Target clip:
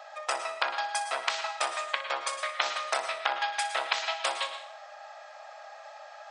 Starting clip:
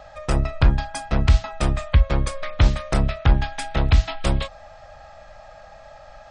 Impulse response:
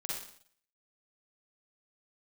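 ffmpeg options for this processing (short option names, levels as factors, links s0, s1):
-filter_complex "[0:a]highpass=f=680:w=0.5412,highpass=f=680:w=1.3066,asplit=2[s0][s1];[1:a]atrim=start_sample=2205,adelay=61[s2];[s1][s2]afir=irnorm=-1:irlink=0,volume=0.355[s3];[s0][s3]amix=inputs=2:normalize=0"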